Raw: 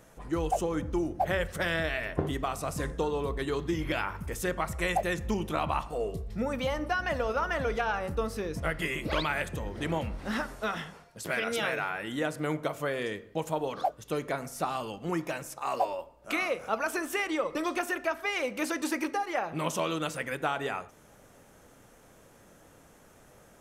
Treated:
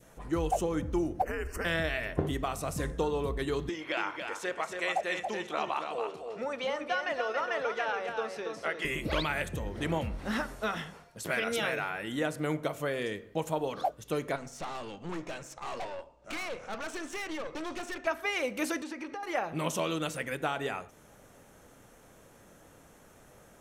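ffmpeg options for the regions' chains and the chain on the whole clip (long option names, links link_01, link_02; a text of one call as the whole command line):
ffmpeg -i in.wav -filter_complex "[0:a]asettb=1/sr,asplit=3[link_01][link_02][link_03];[link_01]atrim=end=1.224[link_04];[link_02]atrim=start=1.22:end=1.65,asetpts=PTS-STARTPTS,afade=type=in:duration=0.004:curve=qsin,afade=type=out:start_time=0.426:duration=0.004:curve=qsin,acompressor=threshold=-30dB:ratio=4:attack=3.2:release=140:knee=1:detection=peak,afreqshift=-110,asuperstop=centerf=3600:order=12:qfactor=2.6[link_05];[link_03]atrim=start=1.646[link_06];[link_04][link_05]acrossfade=duration=0.004:curve1=hsin:curve2=qsin[link_07];[link_07][link_06]acrossfade=duration=0.004:curve1=qsin:curve2=hsin,asettb=1/sr,asplit=3[link_08][link_09][link_10];[link_08]atrim=end=3.694[link_11];[link_09]atrim=start=3.69:end=8.85,asetpts=PTS-STARTPTS,afade=type=in:duration=0.004:curve=qsin,afade=type=out:start_time=5.156:duration=0.004:curve=qsin,highpass=450,lowpass=5900,aecho=1:1:279|558|837:0.531|0.0956|0.0172,atrim=end_sample=227556[link_12];[link_10]atrim=start=8.846[link_13];[link_11][link_12]acrossfade=duration=0.004:curve1=hsin:curve2=qsin[link_14];[link_14][link_13]acrossfade=duration=0.004:curve1=qsin:curve2=hsin,asettb=1/sr,asplit=3[link_15][link_16][link_17];[link_15]atrim=end=14.364[link_18];[link_16]atrim=start=14.36:end=18.07,asetpts=PTS-STARTPTS,afade=type=in:duration=0.004:curve=qsin,afade=type=out:start_time=3.706:duration=0.004:curve=qsin,lowpass=frequency=7400:width=0.5412,lowpass=frequency=7400:width=1.3066,highshelf=frequency=5700:gain=4,aeval=exprs='(tanh(50.1*val(0)+0.6)-tanh(0.6))/50.1':channel_layout=same[link_19];[link_17]atrim=start=18.066[link_20];[link_18][link_19]acrossfade=duration=0.004:curve1=hsin:curve2=qsin[link_21];[link_21][link_20]acrossfade=duration=0.004:curve1=qsin:curve2=hsin,asettb=1/sr,asplit=3[link_22][link_23][link_24];[link_22]atrim=end=18.824[link_25];[link_23]atrim=start=18.82:end=19.23,asetpts=PTS-STARTPTS,afade=type=in:duration=0.004:curve=qsin,afade=type=out:start_time=0.406:duration=0.004:curve=qsin,lowpass=5300,acompressor=threshold=-37dB:ratio=4:attack=3.2:release=140:knee=1:detection=peak[link_26];[link_24]atrim=start=19.226[link_27];[link_25][link_26]acrossfade=duration=0.004:curve1=hsin:curve2=qsin[link_28];[link_28][link_27]acrossfade=duration=0.004:curve1=qsin:curve2=hsin,bandreject=frequency=4900:width=22,adynamicequalizer=threshold=0.00708:dfrequency=1100:dqfactor=1.1:tfrequency=1100:tqfactor=1.1:attack=5:release=100:ratio=0.375:range=2:mode=cutabove:tftype=bell" out.wav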